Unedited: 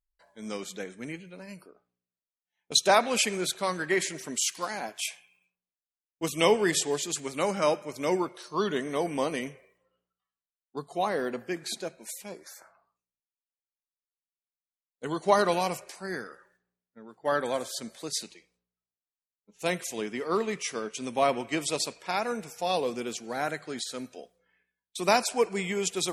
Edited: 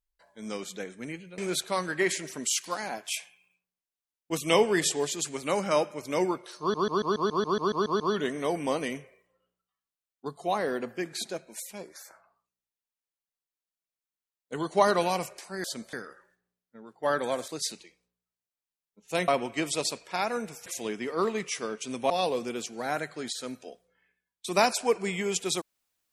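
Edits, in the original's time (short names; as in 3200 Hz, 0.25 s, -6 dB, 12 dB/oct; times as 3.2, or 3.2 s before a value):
1.38–3.29 cut
8.51 stutter 0.14 s, 11 plays
17.7–17.99 move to 16.15
21.23–22.61 move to 19.79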